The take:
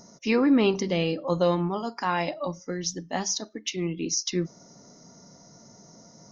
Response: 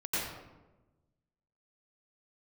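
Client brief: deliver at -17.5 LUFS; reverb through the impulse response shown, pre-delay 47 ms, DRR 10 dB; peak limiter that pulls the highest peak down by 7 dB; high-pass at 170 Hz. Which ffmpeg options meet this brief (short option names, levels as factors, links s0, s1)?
-filter_complex "[0:a]highpass=170,alimiter=limit=0.133:level=0:latency=1,asplit=2[s0][s1];[1:a]atrim=start_sample=2205,adelay=47[s2];[s1][s2]afir=irnorm=-1:irlink=0,volume=0.141[s3];[s0][s3]amix=inputs=2:normalize=0,volume=3.76"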